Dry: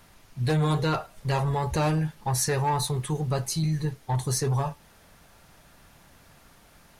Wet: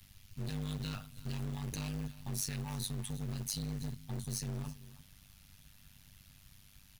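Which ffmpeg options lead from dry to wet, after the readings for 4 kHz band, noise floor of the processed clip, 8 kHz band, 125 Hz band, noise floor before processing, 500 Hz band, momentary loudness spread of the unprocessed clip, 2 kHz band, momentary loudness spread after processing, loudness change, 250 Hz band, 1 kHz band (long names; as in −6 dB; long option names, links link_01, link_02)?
−9.0 dB, −61 dBFS, −9.5 dB, −13.0 dB, −56 dBFS, −20.5 dB, 5 LU, −15.0 dB, 21 LU, −13.0 dB, −11.5 dB, −23.5 dB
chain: -filter_complex "[0:a]firequalizer=gain_entry='entry(120,0);entry(290,-22);entry(2800,-3);entry(8100,-9);entry(12000,-6)':delay=0.05:min_phase=1,acrossover=split=100[link_01][link_02];[link_01]aeval=exprs='0.0106*(abs(mod(val(0)/0.0106+3,4)-2)-1)':channel_layout=same[link_03];[link_02]acompressor=threshold=-33dB:ratio=6[link_04];[link_03][link_04]amix=inputs=2:normalize=0,bandreject=frequency=50:width_type=h:width=6,bandreject=frequency=100:width_type=h:width=6,aecho=1:1:325:0.1,asoftclip=type=tanh:threshold=-34dB,highshelf=frequency=5100:gain=7.5,tremolo=f=99:d=0.889,acrusher=bits=4:mode=log:mix=0:aa=0.000001,volume=2.5dB"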